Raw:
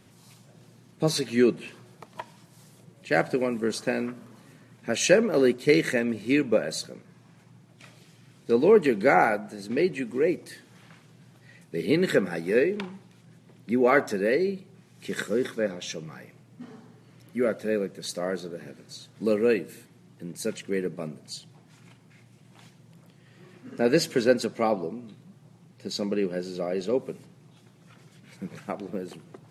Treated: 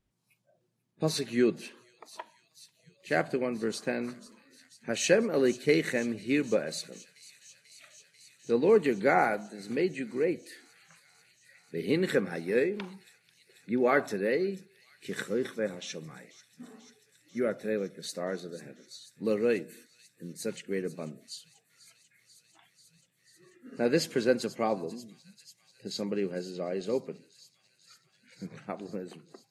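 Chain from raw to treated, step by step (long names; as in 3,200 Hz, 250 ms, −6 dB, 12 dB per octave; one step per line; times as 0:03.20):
noise reduction from a noise print of the clip's start 21 dB
delay with a high-pass on its return 490 ms, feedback 83%, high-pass 4,500 Hz, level −13.5 dB
level −4.5 dB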